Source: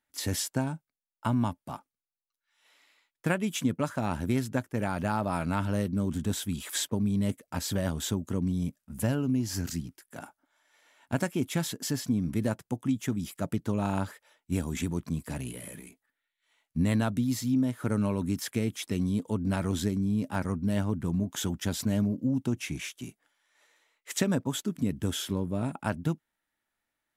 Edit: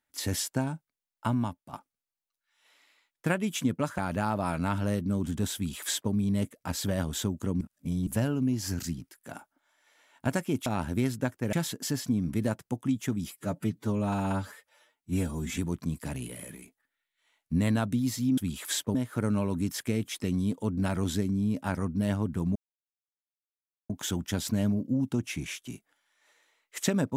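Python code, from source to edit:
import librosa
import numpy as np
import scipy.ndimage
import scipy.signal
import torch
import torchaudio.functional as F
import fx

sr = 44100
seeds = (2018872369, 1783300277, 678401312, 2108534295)

y = fx.edit(x, sr, fx.fade_out_to(start_s=1.27, length_s=0.46, floor_db=-9.5),
    fx.move(start_s=3.98, length_s=0.87, to_s=11.53),
    fx.duplicate(start_s=6.42, length_s=0.57, to_s=17.62),
    fx.reverse_span(start_s=8.48, length_s=0.46),
    fx.stretch_span(start_s=13.31, length_s=1.51, factor=1.5),
    fx.insert_silence(at_s=21.23, length_s=1.34), tone=tone)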